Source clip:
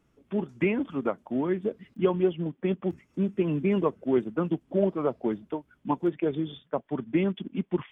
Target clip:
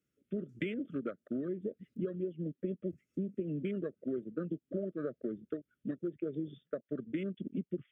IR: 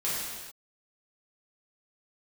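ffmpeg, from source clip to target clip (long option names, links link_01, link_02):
-filter_complex "[0:a]highpass=85,aemphasis=mode=production:type=cd,afwtdn=0.0141,asettb=1/sr,asplit=3[link_01][link_02][link_03];[link_01]atrim=end=6.354[link_04];[link_02]atrim=start=6.35:end=7,asetpts=PTS-STARTPTS,afade=type=in:duration=0.004:curve=qsin,afade=type=out:start_time=0.646:duration=0.004:curve=qsin,equalizer=frequency=540:width=0.61:gain=3.5[link_05];[link_03]atrim=start=6.996[link_06];[link_04][link_05]acrossfade=duration=0.004:curve1=hsin:curve2=qsin[link_07];[link_07][link_06]acrossfade=duration=0.004:curve1=qsin:curve2=hsin,acompressor=threshold=-33dB:ratio=10,asuperstop=centerf=880:order=8:qfactor=1.4"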